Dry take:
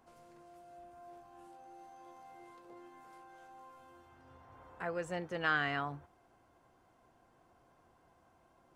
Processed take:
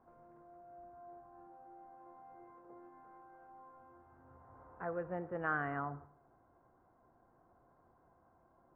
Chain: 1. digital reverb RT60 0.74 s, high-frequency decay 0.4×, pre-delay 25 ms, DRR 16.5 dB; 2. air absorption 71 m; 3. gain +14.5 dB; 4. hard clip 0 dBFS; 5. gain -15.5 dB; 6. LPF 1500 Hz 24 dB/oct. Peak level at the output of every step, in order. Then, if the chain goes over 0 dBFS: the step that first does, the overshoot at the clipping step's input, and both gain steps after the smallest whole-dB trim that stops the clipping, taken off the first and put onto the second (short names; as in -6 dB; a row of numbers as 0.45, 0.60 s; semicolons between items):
-18.5, -19.0, -4.5, -4.5, -20.0, -24.0 dBFS; no overload